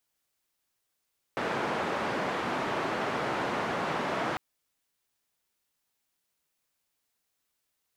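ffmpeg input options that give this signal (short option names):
-f lavfi -i "anoisesrc=c=white:d=3:r=44100:seed=1,highpass=f=160,lowpass=f=1200,volume=-13.4dB"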